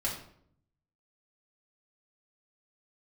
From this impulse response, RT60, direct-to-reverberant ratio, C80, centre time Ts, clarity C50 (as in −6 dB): 0.65 s, −4.5 dB, 9.5 dB, 30 ms, 5.5 dB